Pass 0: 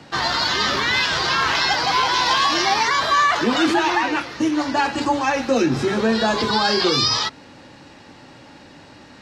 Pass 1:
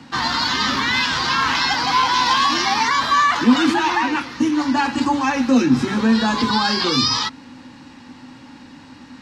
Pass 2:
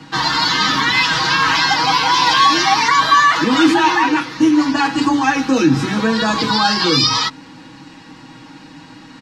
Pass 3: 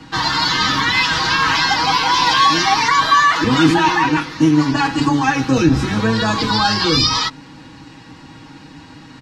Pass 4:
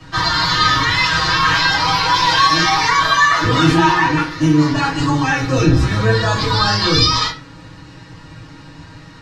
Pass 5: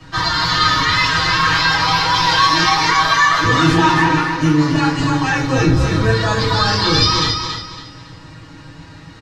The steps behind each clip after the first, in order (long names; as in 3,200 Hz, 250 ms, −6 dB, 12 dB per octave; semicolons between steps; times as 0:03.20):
thirty-one-band graphic EQ 250 Hz +12 dB, 400 Hz −9 dB, 630 Hz −10 dB, 1,000 Hz +4 dB
comb filter 6.3 ms, depth 92%; level +1.5 dB
sub-octave generator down 1 octave, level −4 dB; level −1 dB
convolution reverb RT60 0.35 s, pre-delay 3 ms, DRR −3.5 dB; level −5.5 dB
repeating echo 278 ms, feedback 30%, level −6 dB; level −1 dB